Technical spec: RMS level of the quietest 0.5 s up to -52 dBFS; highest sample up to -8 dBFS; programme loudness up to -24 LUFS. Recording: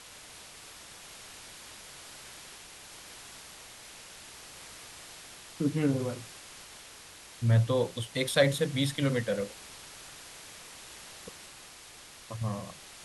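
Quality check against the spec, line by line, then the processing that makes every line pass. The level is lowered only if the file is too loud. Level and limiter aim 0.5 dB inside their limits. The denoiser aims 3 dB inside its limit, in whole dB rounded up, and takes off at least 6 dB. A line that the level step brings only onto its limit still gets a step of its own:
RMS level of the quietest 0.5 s -50 dBFS: fail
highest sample -9.5 dBFS: OK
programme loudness -29.5 LUFS: OK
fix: denoiser 6 dB, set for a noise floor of -50 dBFS

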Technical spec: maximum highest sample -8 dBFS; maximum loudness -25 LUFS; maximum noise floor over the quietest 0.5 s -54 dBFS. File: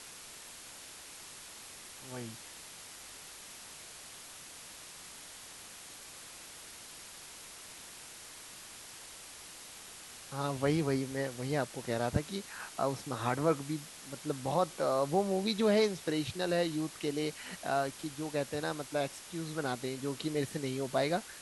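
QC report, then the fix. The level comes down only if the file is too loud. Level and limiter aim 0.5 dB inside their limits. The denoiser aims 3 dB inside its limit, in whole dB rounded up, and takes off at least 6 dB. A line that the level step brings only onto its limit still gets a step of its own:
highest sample -15.5 dBFS: OK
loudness -34.0 LUFS: OK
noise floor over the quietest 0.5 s -50 dBFS: fail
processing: denoiser 7 dB, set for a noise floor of -50 dBFS

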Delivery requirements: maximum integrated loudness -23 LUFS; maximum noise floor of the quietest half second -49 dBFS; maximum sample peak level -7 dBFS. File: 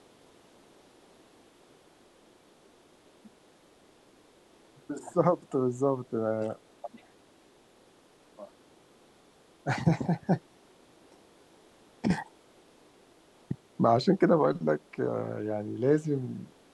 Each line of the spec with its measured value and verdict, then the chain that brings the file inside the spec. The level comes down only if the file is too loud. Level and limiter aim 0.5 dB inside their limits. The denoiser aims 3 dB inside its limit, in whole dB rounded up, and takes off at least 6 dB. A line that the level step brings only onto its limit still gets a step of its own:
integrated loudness -29.0 LUFS: OK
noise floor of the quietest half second -60 dBFS: OK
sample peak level -10.5 dBFS: OK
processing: none

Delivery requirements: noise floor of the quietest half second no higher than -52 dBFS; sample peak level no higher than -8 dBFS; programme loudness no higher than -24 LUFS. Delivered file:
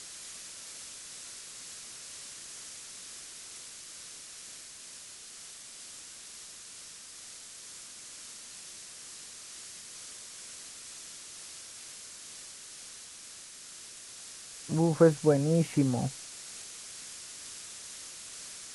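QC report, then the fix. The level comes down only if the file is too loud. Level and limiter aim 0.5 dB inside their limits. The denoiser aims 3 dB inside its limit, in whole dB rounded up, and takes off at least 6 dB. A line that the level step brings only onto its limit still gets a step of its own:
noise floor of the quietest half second -48 dBFS: fail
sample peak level -9.5 dBFS: OK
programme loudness -36.0 LUFS: OK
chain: denoiser 7 dB, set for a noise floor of -48 dBFS

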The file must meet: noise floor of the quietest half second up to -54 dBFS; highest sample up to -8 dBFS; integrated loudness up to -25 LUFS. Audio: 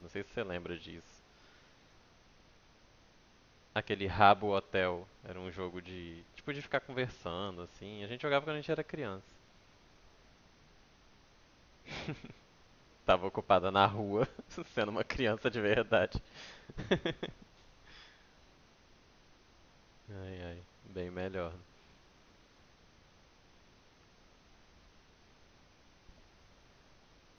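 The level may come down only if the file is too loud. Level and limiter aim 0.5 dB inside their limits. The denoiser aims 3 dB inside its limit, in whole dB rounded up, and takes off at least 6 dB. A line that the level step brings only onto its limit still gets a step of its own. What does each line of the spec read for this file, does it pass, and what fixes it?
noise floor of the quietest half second -64 dBFS: OK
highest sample -8.5 dBFS: OK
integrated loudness -35.0 LUFS: OK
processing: none

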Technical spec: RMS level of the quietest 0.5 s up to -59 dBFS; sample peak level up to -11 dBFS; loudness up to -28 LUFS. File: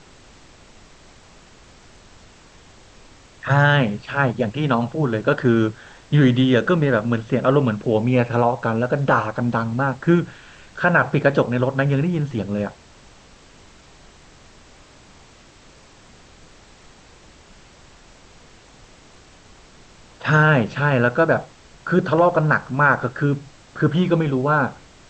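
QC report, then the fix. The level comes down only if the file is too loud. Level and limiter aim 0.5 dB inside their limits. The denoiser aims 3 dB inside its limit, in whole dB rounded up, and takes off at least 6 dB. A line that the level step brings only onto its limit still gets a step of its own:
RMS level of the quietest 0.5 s -48 dBFS: fail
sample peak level -4.5 dBFS: fail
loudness -19.5 LUFS: fail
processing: denoiser 6 dB, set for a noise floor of -48 dBFS; gain -9 dB

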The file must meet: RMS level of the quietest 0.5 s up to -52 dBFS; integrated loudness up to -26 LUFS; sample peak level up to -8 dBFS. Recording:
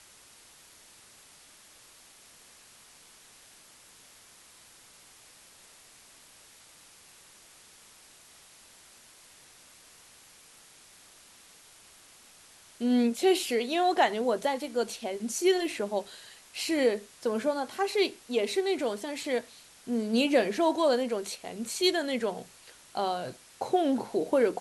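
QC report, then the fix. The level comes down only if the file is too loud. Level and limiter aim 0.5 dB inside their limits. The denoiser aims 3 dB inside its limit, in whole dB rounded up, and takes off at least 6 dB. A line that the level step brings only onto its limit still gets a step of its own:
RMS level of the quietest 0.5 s -56 dBFS: OK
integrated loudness -28.5 LUFS: OK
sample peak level -11.0 dBFS: OK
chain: none

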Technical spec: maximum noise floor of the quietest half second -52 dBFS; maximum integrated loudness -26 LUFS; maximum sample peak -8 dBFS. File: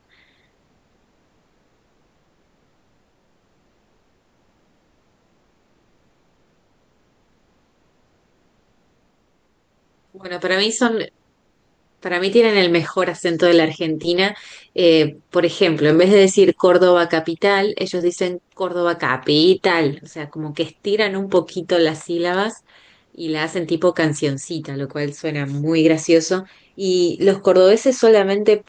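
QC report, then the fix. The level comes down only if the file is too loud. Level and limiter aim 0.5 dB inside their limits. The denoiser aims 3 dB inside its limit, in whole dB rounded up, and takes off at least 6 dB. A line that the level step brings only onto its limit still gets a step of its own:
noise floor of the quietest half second -62 dBFS: OK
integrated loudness -17.5 LUFS: fail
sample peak -3.5 dBFS: fail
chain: gain -9 dB

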